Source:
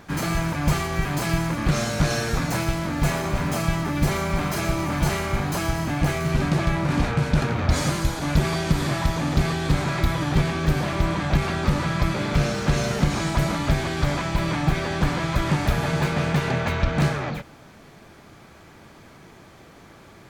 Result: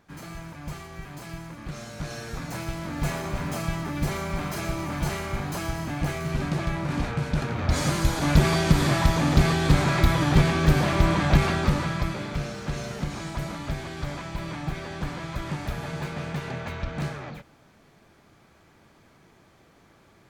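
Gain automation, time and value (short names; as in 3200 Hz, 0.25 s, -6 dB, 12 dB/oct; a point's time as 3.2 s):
1.77 s -15 dB
3.01 s -5.5 dB
7.46 s -5.5 dB
8.21 s +2 dB
11.42 s +2 dB
12.43 s -9.5 dB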